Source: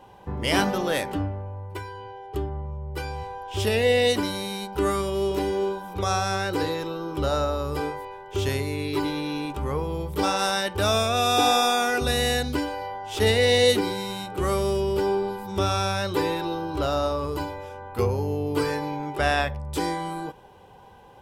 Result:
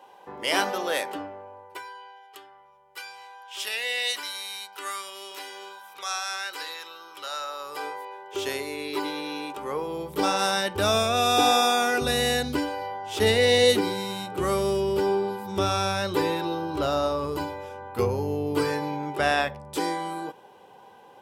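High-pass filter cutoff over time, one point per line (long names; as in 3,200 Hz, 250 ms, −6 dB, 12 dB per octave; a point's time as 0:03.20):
0:01.55 450 Hz
0:02.28 1,400 Hz
0:07.39 1,400 Hz
0:08.18 390 Hz
0:09.60 390 Hz
0:10.60 110 Hz
0:19.00 110 Hz
0:19.79 240 Hz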